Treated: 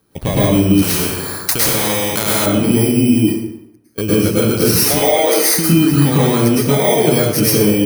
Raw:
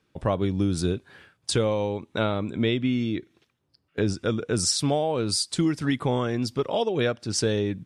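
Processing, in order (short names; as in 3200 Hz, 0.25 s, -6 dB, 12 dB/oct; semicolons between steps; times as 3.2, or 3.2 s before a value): FFT order left unsorted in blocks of 16 samples; 3.15–4.05 dip -14 dB, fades 0.33 s quadratic; 4.83–5.53 HPF 380 Hz 24 dB/oct; compressor, threshold -26 dBFS, peak gain reduction 8 dB; plate-style reverb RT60 0.85 s, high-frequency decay 0.7×, pre-delay 95 ms, DRR -8 dB; maximiser +10 dB; 0.82–2.46 spectral compressor 2:1; gain -1 dB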